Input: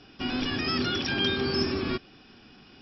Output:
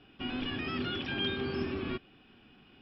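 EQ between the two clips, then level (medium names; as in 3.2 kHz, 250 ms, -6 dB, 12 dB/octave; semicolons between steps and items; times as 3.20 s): distance through air 390 m; peaking EQ 3 kHz +8 dB 0.82 oct; -5.5 dB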